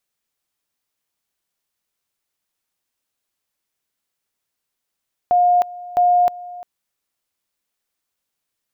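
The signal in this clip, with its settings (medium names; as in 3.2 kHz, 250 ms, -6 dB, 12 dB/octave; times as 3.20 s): two-level tone 712 Hz -11 dBFS, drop 19.5 dB, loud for 0.31 s, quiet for 0.35 s, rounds 2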